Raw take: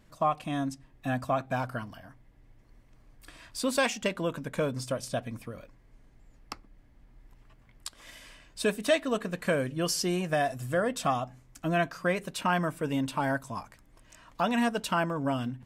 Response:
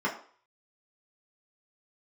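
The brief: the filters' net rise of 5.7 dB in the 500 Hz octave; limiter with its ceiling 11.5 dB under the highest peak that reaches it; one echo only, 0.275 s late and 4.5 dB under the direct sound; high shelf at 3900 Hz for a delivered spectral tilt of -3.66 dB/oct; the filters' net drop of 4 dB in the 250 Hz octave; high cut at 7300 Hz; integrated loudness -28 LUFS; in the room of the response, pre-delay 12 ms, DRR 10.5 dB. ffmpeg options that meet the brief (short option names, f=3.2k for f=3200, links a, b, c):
-filter_complex "[0:a]lowpass=7.3k,equalizer=f=250:t=o:g=-8,equalizer=f=500:t=o:g=8.5,highshelf=f=3.9k:g=9,alimiter=limit=-19.5dB:level=0:latency=1,aecho=1:1:275:0.596,asplit=2[a][b];[1:a]atrim=start_sample=2205,adelay=12[c];[b][c]afir=irnorm=-1:irlink=0,volume=-20.5dB[d];[a][d]amix=inputs=2:normalize=0,volume=1.5dB"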